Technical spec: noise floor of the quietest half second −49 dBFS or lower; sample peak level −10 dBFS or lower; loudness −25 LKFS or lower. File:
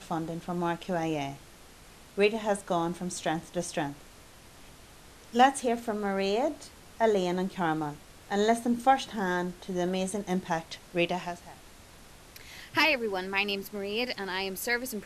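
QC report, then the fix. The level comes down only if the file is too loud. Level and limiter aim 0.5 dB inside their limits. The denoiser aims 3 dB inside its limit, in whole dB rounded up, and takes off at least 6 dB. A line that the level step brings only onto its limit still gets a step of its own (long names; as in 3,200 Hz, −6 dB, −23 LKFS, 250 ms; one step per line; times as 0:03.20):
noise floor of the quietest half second −52 dBFS: in spec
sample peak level −9.5 dBFS: out of spec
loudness −29.5 LKFS: in spec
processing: brickwall limiter −10.5 dBFS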